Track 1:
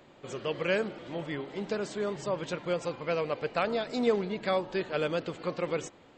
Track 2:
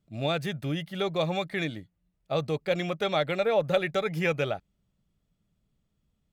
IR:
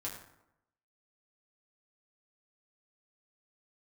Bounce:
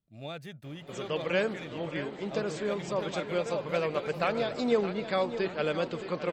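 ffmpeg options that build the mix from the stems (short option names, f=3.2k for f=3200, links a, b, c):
-filter_complex "[0:a]adelay=650,volume=0dB,asplit=2[a][b];[b]volume=-11.5dB[c];[1:a]volume=-12dB,asplit=2[d][e];[e]volume=-18dB[f];[c][f]amix=inputs=2:normalize=0,aecho=0:1:618|1236|1854|2472|3090|3708:1|0.46|0.212|0.0973|0.0448|0.0206[g];[a][d][g]amix=inputs=3:normalize=0"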